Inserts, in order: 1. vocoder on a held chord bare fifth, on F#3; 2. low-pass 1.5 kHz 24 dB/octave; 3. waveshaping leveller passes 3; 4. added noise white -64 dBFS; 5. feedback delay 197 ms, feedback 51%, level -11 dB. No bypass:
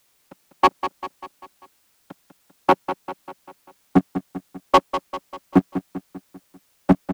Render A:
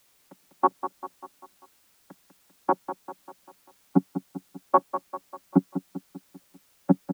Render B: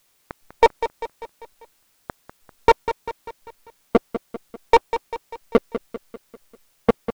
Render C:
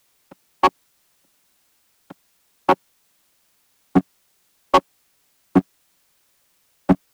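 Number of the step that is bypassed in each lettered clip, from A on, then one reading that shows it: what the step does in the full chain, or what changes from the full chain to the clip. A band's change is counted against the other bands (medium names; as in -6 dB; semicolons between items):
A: 3, crest factor change +5.5 dB; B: 1, 125 Hz band -9.0 dB; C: 5, echo-to-direct -9.5 dB to none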